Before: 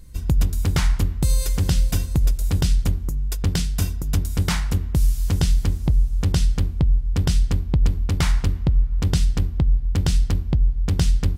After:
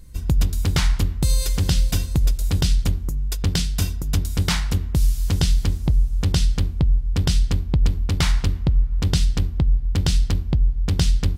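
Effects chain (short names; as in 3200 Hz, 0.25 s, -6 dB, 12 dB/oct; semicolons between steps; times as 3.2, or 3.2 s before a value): dynamic EQ 3900 Hz, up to +5 dB, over -46 dBFS, Q 1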